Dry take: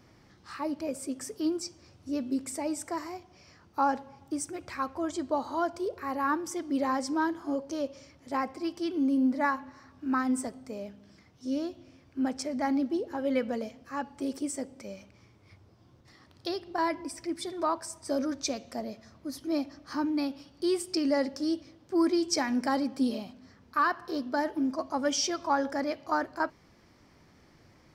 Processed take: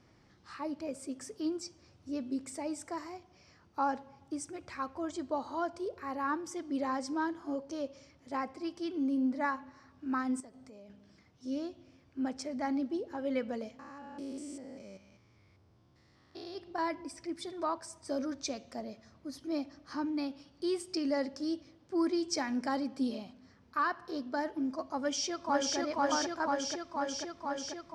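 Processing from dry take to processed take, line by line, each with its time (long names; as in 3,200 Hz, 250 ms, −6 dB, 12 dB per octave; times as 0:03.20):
0:10.40–0:10.90: downward compressor 4 to 1, threshold −45 dBFS
0:13.79–0:16.58: spectrum averaged block by block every 200 ms
0:24.99–0:25.77: delay throw 490 ms, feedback 80%, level 0 dB
whole clip: low-pass filter 8,600 Hz 12 dB per octave; level −5 dB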